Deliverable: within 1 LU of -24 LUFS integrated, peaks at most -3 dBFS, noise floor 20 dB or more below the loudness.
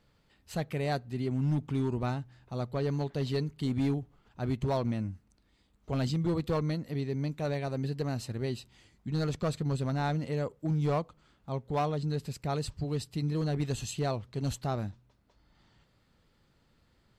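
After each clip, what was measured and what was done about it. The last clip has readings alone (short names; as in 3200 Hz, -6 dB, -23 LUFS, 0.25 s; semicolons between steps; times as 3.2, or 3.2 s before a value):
clipped 1.5%; flat tops at -23.5 dBFS; loudness -33.0 LUFS; peak -23.5 dBFS; loudness target -24.0 LUFS
-> clip repair -23.5 dBFS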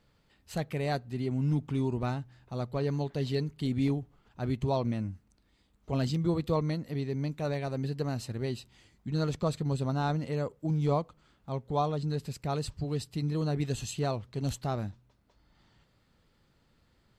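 clipped 0.0%; loudness -32.5 LUFS; peak -16.0 dBFS; loudness target -24.0 LUFS
-> gain +8.5 dB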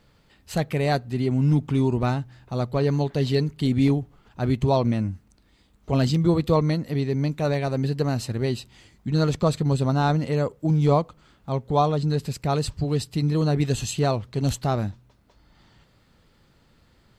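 loudness -24.0 LUFS; peak -7.5 dBFS; noise floor -60 dBFS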